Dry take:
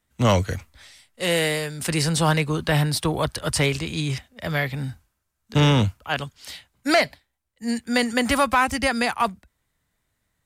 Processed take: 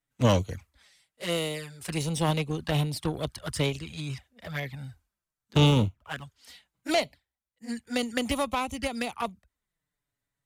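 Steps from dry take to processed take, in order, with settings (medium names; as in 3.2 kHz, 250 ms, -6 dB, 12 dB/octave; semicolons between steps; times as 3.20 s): 5.66–6.23 s: median filter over 9 samples; touch-sensitive flanger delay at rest 7.2 ms, full sweep at -18.5 dBFS; Chebyshev shaper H 3 -14 dB, 7 -42 dB, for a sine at -9.5 dBFS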